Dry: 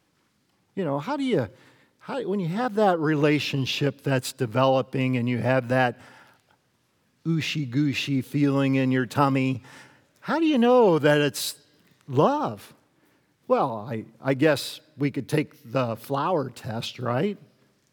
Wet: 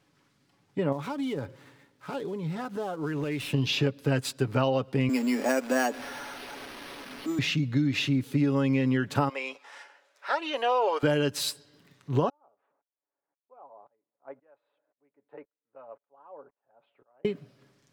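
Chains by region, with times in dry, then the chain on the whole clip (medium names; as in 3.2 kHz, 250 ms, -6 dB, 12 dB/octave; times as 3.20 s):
0.92–3.53 s: dead-time distortion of 0.076 ms + compression 4:1, threshold -31 dBFS
5.09–7.39 s: jump at every zero crossing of -35 dBFS + elliptic high-pass 230 Hz + careless resampling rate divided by 6×, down none, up hold
9.29–11.03 s: high-pass 530 Hz 24 dB/octave + treble shelf 11 kHz -11 dB
12.29–17.25 s: ladder band-pass 840 Hz, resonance 30% + distance through air 390 m + sawtooth tremolo in dB swelling 1.9 Hz, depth 33 dB
whole clip: treble shelf 10 kHz -8 dB; comb 7.1 ms, depth 38%; compression 6:1, threshold -21 dBFS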